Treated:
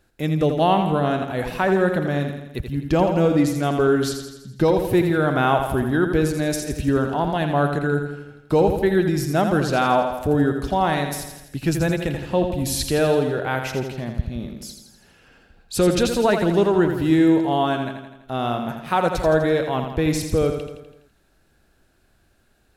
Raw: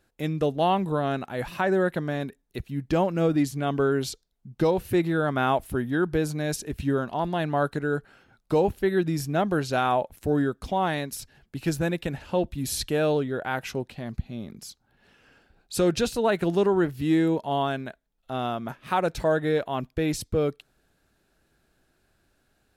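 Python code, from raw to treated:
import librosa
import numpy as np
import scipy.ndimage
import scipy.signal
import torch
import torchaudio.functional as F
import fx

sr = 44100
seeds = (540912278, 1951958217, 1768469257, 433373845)

p1 = fx.low_shelf(x, sr, hz=90.0, db=5.0)
p2 = p1 + fx.echo_feedback(p1, sr, ms=83, feedback_pct=57, wet_db=-7.0, dry=0)
y = p2 * 10.0 ** (4.0 / 20.0)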